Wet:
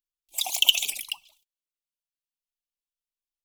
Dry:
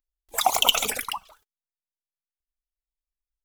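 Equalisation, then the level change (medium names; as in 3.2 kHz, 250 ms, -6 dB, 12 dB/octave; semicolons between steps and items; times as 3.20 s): resonant high shelf 1.9 kHz +12 dB, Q 3; static phaser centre 320 Hz, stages 8; -14.0 dB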